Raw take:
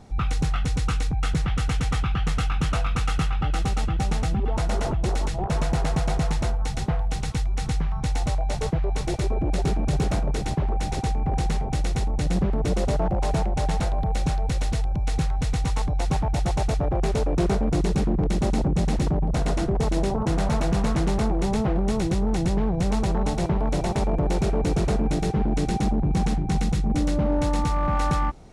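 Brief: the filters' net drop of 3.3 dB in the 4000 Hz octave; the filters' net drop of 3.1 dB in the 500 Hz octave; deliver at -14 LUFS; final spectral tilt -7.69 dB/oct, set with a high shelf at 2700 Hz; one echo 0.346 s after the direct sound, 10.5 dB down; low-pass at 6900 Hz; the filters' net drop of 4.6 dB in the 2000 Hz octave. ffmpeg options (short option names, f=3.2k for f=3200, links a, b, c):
-af "lowpass=6.9k,equalizer=f=500:t=o:g=-4,equalizer=f=2k:t=o:g=-6.5,highshelf=f=2.7k:g=5.5,equalizer=f=4k:t=o:g=-6.5,aecho=1:1:346:0.299,volume=11dB"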